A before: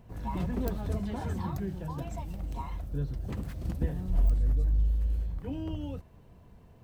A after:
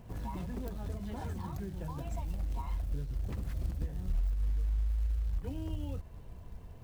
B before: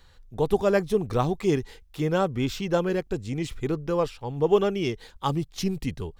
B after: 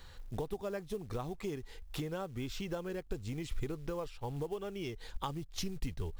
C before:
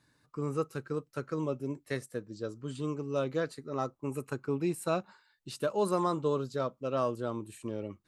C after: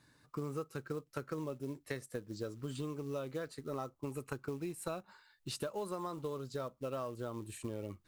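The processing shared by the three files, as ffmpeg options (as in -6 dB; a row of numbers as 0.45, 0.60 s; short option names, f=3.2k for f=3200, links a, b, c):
-af "acrusher=bits=6:mode=log:mix=0:aa=0.000001,acompressor=threshold=-38dB:ratio=10,asubboost=boost=2.5:cutoff=94,volume=2.5dB"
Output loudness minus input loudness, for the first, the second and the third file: -4.5, -14.5, -7.5 LU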